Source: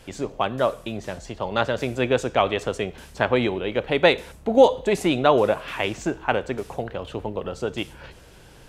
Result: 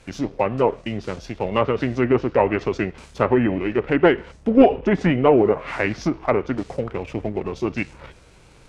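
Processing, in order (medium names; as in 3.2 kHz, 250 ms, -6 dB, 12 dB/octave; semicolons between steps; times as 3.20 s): formant shift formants -4 st; waveshaping leveller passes 1; low-pass that closes with the level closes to 1.8 kHz, closed at -14 dBFS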